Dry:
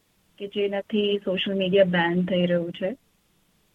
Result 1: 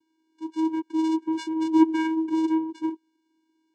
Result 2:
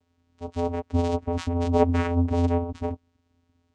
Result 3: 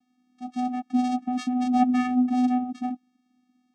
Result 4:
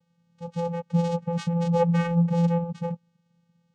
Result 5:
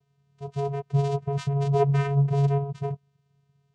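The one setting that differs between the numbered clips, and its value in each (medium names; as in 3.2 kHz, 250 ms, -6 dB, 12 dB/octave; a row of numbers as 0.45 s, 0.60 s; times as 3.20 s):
vocoder, frequency: 320 Hz, 86 Hz, 250 Hz, 170 Hz, 140 Hz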